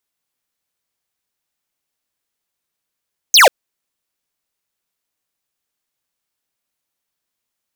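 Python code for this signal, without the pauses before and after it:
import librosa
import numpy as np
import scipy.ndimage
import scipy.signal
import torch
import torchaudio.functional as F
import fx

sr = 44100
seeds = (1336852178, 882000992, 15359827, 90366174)

y = fx.laser_zap(sr, level_db=-7.0, start_hz=6800.0, end_hz=460.0, length_s=0.14, wave='square')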